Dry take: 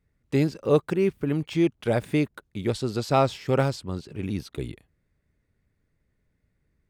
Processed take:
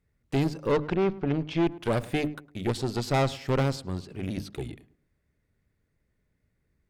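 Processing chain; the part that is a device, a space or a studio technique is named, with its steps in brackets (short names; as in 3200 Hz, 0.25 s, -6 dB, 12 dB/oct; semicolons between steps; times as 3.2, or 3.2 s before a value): 0.72–1.67 LPF 4900 Hz 24 dB/oct; notches 50/100/150/200/250/300 Hz; rockabilly slapback (tube stage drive 22 dB, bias 0.7; tape echo 0.107 s, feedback 34%, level -16.5 dB, low-pass 1300 Hz); gain +3 dB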